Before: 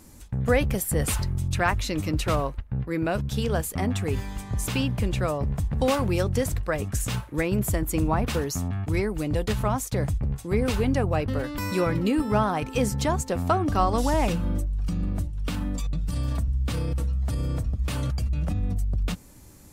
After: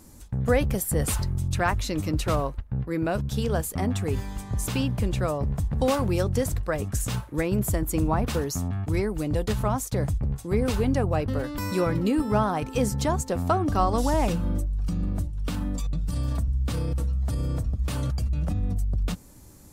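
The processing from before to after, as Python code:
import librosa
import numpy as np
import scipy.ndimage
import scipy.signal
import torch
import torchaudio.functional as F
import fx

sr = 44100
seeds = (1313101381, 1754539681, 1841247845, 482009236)

y = fx.peak_eq(x, sr, hz=2400.0, db=-4.0, octaves=1.2)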